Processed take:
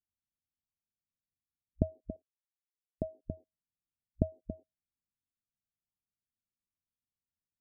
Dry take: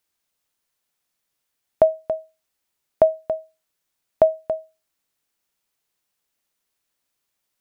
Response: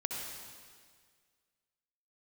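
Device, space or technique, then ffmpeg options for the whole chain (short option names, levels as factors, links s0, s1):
the neighbour's flat through the wall: -filter_complex "[0:a]afwtdn=0.02,asettb=1/sr,asplit=3[s0][s1][s2];[s0]atrim=end=2.164[s3];[s1]atrim=start=2.16:end=3.08,asetpts=PTS-STARTPTS,afade=t=in:d=0.004:c=qsin,afade=t=out:st=0.916:d=0.004:c=qsin,agate=range=0.0224:threshold=0.0398:ratio=3:detection=peak[s4];[s2]atrim=start=3.076[s5];[s3][s4]acrossfade=d=0.004:c1=hsin:c2=qsin[s6];[s6][s5]acrossfade=d=0.004:c1=qsin:c2=hsin,lowpass=f=250:w=0.5412,lowpass=f=250:w=1.3066,equalizer=f=86:t=o:w=0.4:g=7,volume=2.51"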